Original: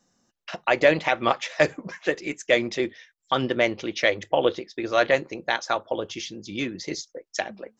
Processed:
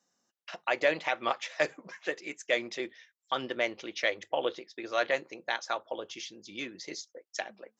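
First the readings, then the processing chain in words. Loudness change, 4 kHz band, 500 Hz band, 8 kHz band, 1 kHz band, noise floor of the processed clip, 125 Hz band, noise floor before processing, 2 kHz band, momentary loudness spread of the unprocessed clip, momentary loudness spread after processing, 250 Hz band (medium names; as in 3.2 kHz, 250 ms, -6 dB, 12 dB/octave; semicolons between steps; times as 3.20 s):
-8.0 dB, -6.5 dB, -9.0 dB, no reading, -7.5 dB, -82 dBFS, -18.0 dB, -73 dBFS, -7.0 dB, 12 LU, 12 LU, -12.5 dB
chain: high-pass 500 Hz 6 dB/octave; trim -6.5 dB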